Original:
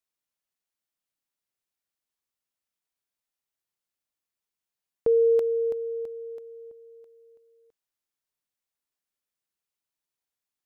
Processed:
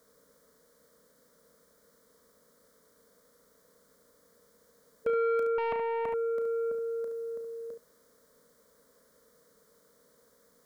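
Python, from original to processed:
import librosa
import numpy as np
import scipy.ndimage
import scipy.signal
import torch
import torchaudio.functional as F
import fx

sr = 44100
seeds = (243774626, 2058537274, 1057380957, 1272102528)

p1 = fx.bin_compress(x, sr, power=0.6)
p2 = scipy.signal.sosfilt(scipy.signal.butter(2, 50.0, 'highpass', fs=sr, output='sos'), p1)
p3 = fx.over_compress(p2, sr, threshold_db=-33.0, ratio=-1.0)
p4 = p2 + F.gain(torch.from_numpy(p3), -3.0).numpy()
p5 = fx.fixed_phaser(p4, sr, hz=530.0, stages=8)
p6 = 10.0 ** (-24.0 / 20.0) * np.tanh(p5 / 10.0 ** (-24.0 / 20.0))
p7 = p6 + fx.room_early_taps(p6, sr, ms=(34, 71), db=(-10.0, -8.0), dry=0)
y = fx.doppler_dist(p7, sr, depth_ms=0.6, at=(5.58, 6.14))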